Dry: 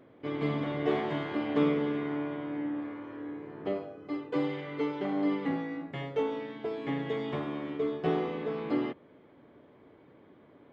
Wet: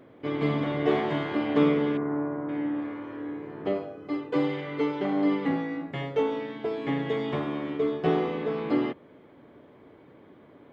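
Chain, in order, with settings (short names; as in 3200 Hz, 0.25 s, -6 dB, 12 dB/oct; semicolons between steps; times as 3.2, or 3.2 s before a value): 1.97–2.49 LPF 1500 Hz 24 dB/oct; gain +4.5 dB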